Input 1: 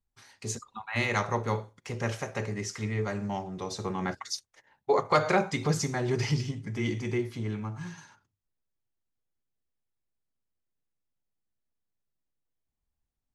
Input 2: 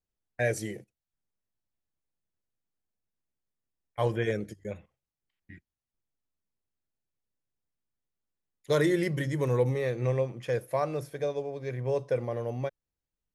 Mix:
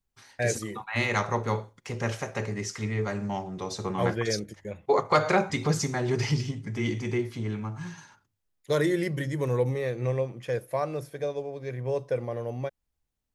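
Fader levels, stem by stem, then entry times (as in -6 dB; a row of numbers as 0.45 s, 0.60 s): +1.5 dB, 0.0 dB; 0.00 s, 0.00 s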